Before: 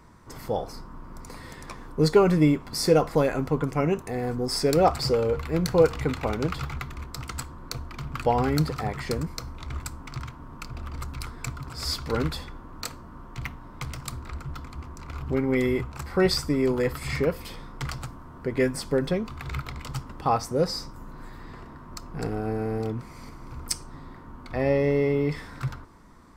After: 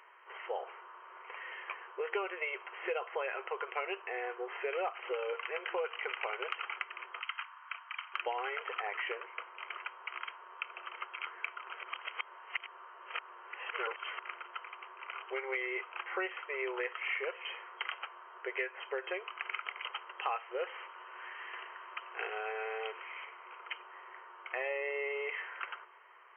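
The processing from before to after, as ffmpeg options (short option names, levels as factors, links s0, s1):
-filter_complex "[0:a]asettb=1/sr,asplit=3[s0][s1][s2];[s0]atrim=end=7.204[s3];[s1]atrim=start=7.2:end=8.14,asetpts=PTS-STARTPTS,afade=t=in:d=0.004:c=qsin,afade=t=out:st=0.936:d=0.004:c=qsin,highpass=f=940:w=0.5412,highpass=f=940:w=1.3066[s4];[s2]atrim=start=8.136[s5];[s3][s4]acrossfade=d=0.004:c1=hsin:c2=qsin[s6];[s6][s5]acrossfade=d=0.004:c1=qsin:c2=hsin,asettb=1/sr,asplit=3[s7][s8][s9];[s7]atrim=end=20.194[s10];[s8]atrim=start=20.19:end=23.25,asetpts=PTS-STARTPTS,afade=t=in:d=0.004:c=qsin,afade=t=out:st=3.056:d=0.004:c=qsin,highshelf=f=2500:g=11.5[s11];[s9]atrim=start=23.246[s12];[s10][s11]acrossfade=d=0.004:c1=hsin:c2=qsin[s13];[s13][s12]acrossfade=d=0.004:c1=qsin:c2=hsin,asplit=3[s14][s15][s16];[s14]atrim=end=11.832[s17];[s15]atrim=start=11.828:end=14.192,asetpts=PTS-STARTPTS,areverse[s18];[s16]atrim=start=14.188[s19];[s17][s18]acrossfade=d=0.004:c1=hsin:c2=hsin[s20];[s20][s19]acrossfade=d=0.004:c1=hsin:c2=hsin,afftfilt=real='re*between(b*sr/4096,350,3200)':imag='im*between(b*sr/4096,350,3200)':win_size=4096:overlap=0.75,aderivative,acompressor=threshold=0.00398:ratio=5,volume=5.62"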